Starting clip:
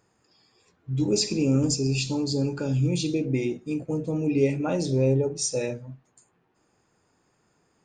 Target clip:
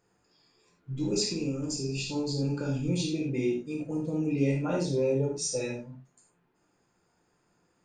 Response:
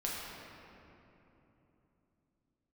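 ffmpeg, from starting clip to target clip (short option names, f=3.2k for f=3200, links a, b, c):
-filter_complex "[0:a]asettb=1/sr,asplit=3[a][b][c];[a]atrim=end=1.284[d];[b]atrim=start=1.28:end=2.43,asetpts=PTS-STARTPTS,afade=t=in:d=0.004:c=qsin,afade=t=out:st=1.146:d=0.004:c=qsin,acompressor=threshold=-24dB:ratio=6[e];[c]atrim=start=2.426[f];[d][e]acrossfade=d=0.004:c1=hsin:c2=qsin[g];[g][f]acrossfade=d=0.004:c1=qsin:c2=hsin[h];[1:a]atrim=start_sample=2205,atrim=end_sample=4410[i];[h][i]afir=irnorm=-1:irlink=0,volume=-4dB"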